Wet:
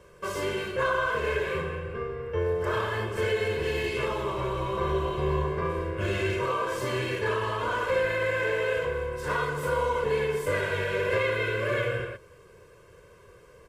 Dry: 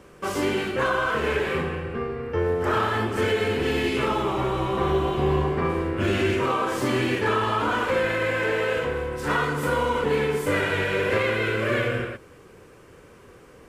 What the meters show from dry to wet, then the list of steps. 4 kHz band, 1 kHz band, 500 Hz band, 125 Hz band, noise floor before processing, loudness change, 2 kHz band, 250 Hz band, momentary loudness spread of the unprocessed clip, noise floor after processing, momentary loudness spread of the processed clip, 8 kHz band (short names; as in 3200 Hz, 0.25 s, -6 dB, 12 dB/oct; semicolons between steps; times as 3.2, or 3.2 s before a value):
-5.5 dB, -5.0 dB, -3.0 dB, -4.0 dB, -50 dBFS, -4.0 dB, -3.5 dB, -9.5 dB, 4 LU, -54 dBFS, 5 LU, -4.5 dB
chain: comb 1.9 ms, depth 75%; gain -6.5 dB